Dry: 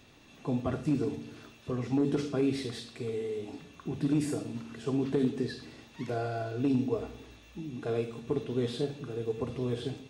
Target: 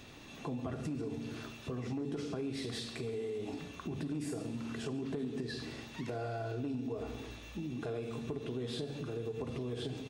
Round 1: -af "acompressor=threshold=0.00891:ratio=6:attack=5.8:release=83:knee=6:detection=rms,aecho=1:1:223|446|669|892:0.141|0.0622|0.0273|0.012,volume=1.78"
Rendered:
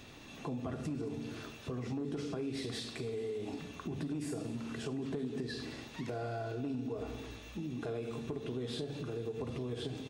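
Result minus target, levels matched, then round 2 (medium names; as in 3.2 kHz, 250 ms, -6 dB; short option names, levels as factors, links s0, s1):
echo 84 ms late
-af "acompressor=threshold=0.00891:ratio=6:attack=5.8:release=83:knee=6:detection=rms,aecho=1:1:139|278|417|556:0.141|0.0622|0.0273|0.012,volume=1.78"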